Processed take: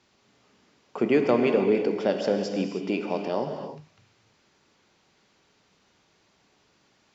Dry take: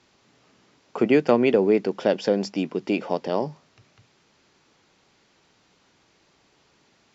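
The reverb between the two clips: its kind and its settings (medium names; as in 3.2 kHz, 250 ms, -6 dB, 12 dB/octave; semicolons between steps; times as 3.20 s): gated-style reverb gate 350 ms flat, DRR 4 dB; trim -4 dB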